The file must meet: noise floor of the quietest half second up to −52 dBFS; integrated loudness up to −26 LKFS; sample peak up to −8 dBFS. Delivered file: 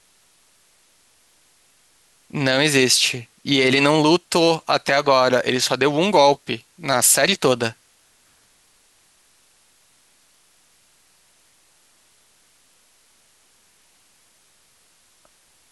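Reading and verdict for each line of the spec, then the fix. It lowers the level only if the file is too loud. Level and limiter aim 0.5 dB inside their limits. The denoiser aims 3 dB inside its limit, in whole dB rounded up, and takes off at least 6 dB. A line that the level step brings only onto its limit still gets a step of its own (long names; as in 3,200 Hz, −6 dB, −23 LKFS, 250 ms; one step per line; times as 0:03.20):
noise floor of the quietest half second −58 dBFS: in spec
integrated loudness −17.5 LKFS: out of spec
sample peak −4.0 dBFS: out of spec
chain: level −9 dB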